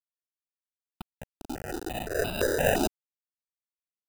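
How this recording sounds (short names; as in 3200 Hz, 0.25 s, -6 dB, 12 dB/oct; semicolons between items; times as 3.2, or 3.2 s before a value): aliases and images of a low sample rate 1100 Hz, jitter 0%; tremolo triangle 4.2 Hz, depth 55%; a quantiser's noise floor 6-bit, dither none; notches that jump at a steady rate 5.8 Hz 500–1800 Hz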